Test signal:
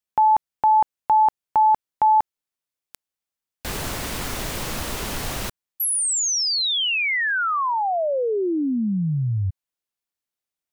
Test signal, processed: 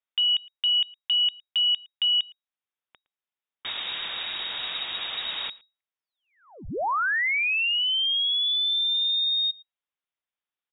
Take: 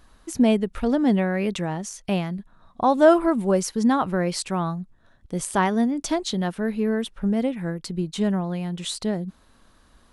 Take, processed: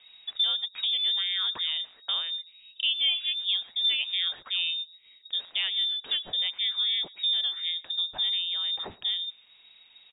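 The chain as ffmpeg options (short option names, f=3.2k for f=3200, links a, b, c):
-af "acompressor=threshold=-21dB:ratio=4:attack=0.14:release=806:knee=6:detection=rms,aecho=1:1:113:0.0631,lowpass=f=3.2k:t=q:w=0.5098,lowpass=f=3.2k:t=q:w=0.6013,lowpass=f=3.2k:t=q:w=0.9,lowpass=f=3.2k:t=q:w=2.563,afreqshift=-3800"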